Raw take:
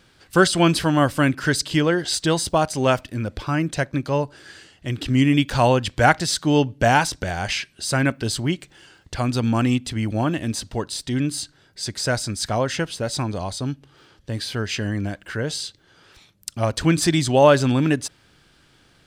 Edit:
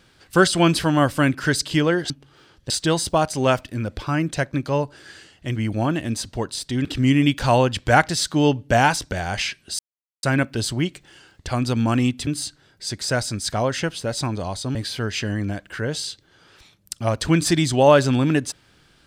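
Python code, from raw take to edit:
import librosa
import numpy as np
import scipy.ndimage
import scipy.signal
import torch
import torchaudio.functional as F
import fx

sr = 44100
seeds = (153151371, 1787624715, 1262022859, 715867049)

y = fx.edit(x, sr, fx.insert_silence(at_s=7.9, length_s=0.44),
    fx.move(start_s=9.94, length_s=1.29, to_s=4.96),
    fx.move(start_s=13.71, length_s=0.6, to_s=2.1), tone=tone)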